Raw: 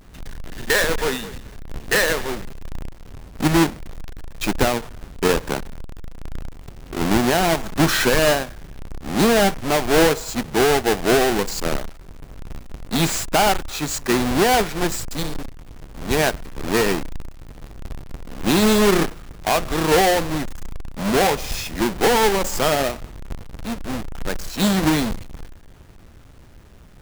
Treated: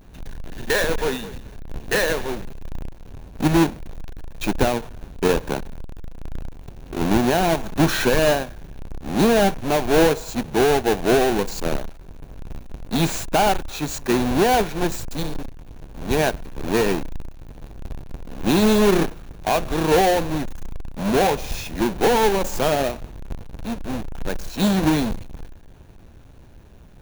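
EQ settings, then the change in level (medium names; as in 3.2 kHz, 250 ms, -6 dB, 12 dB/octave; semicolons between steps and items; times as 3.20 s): graphic EQ with 31 bands 1.25 kHz -6 dB, 2 kHz -6 dB, 3.15 kHz -4 dB, 5 kHz -7 dB, 8 kHz -8 dB, 12.5 kHz -7 dB; 0.0 dB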